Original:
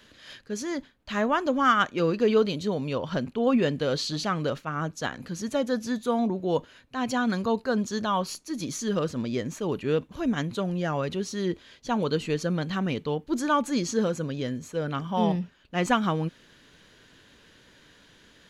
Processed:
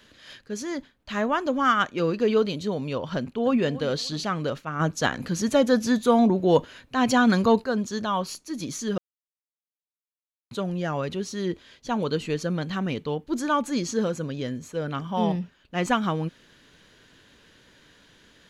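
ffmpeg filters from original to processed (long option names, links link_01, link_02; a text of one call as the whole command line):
ffmpeg -i in.wav -filter_complex "[0:a]asplit=2[link_01][link_02];[link_02]afade=type=in:start_time=3.16:duration=0.01,afade=type=out:start_time=3.62:duration=0.01,aecho=0:1:290|580|870:0.141254|0.0423761|0.0127128[link_03];[link_01][link_03]amix=inputs=2:normalize=0,asplit=3[link_04][link_05][link_06];[link_04]afade=type=out:start_time=4.79:duration=0.02[link_07];[link_05]acontrast=78,afade=type=in:start_time=4.79:duration=0.02,afade=type=out:start_time=7.63:duration=0.02[link_08];[link_06]afade=type=in:start_time=7.63:duration=0.02[link_09];[link_07][link_08][link_09]amix=inputs=3:normalize=0,asplit=3[link_10][link_11][link_12];[link_10]atrim=end=8.98,asetpts=PTS-STARTPTS,afade=type=out:start_time=8.976:duration=0.004:curve=hsin[link_13];[link_11]atrim=start=8.98:end=10.51,asetpts=PTS-STARTPTS,volume=0[link_14];[link_12]atrim=start=10.51,asetpts=PTS-STARTPTS,afade=type=in:duration=0.004:curve=hsin[link_15];[link_13][link_14][link_15]concat=n=3:v=0:a=1" out.wav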